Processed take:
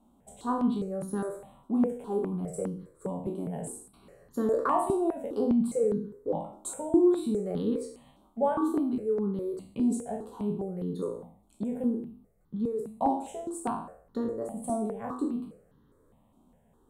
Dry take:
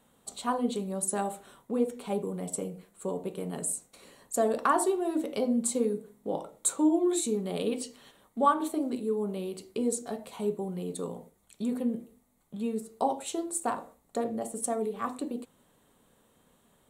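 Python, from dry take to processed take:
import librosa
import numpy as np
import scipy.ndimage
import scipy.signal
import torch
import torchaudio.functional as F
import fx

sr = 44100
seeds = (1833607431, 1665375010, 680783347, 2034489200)

y = fx.spec_trails(x, sr, decay_s=0.56)
y = fx.tilt_shelf(y, sr, db=9.5, hz=1100.0)
y = fx.phaser_held(y, sr, hz=4.9, low_hz=480.0, high_hz=2400.0)
y = y * 10.0 ** (-3.0 / 20.0)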